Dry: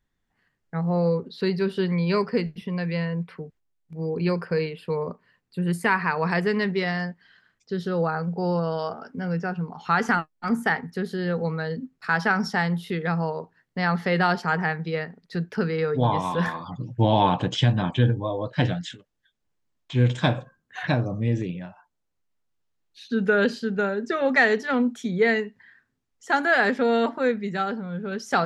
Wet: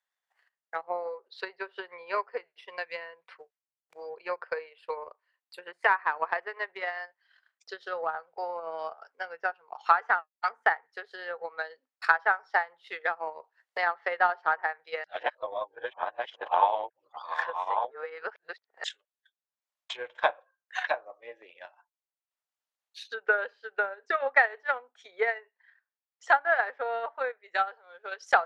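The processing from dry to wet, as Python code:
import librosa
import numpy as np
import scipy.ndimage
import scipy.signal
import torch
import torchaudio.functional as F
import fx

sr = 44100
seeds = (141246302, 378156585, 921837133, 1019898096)

y = fx.band_squash(x, sr, depth_pct=100, at=(13.27, 13.78))
y = fx.air_absorb(y, sr, metres=120.0, at=(25.38, 26.56))
y = fx.edit(y, sr, fx.reverse_span(start_s=15.04, length_s=3.8), tone=tone)
y = fx.env_lowpass_down(y, sr, base_hz=1700.0, full_db=-20.5)
y = scipy.signal.sosfilt(scipy.signal.cheby2(4, 50, 230.0, 'highpass', fs=sr, output='sos'), y)
y = fx.transient(y, sr, attack_db=10, sustain_db=-8)
y = y * 10.0 ** (-5.0 / 20.0)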